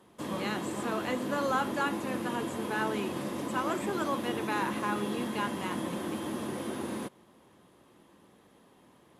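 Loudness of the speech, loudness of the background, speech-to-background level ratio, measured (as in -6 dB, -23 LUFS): -35.0 LUFS, -36.0 LUFS, 1.0 dB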